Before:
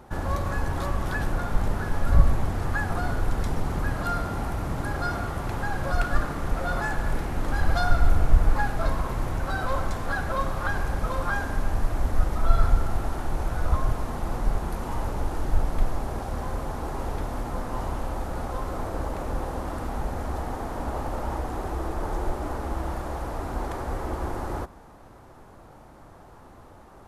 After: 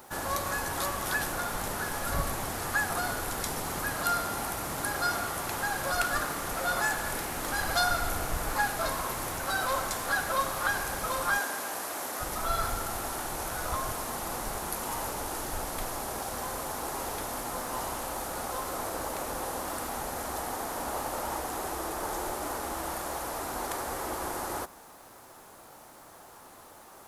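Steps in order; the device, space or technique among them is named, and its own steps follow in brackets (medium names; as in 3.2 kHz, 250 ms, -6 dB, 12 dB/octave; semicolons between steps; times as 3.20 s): turntable without a phono preamp (RIAA curve recording; white noise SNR 33 dB); 11.38–12.21 s: high-pass 280 Hz 12 dB/octave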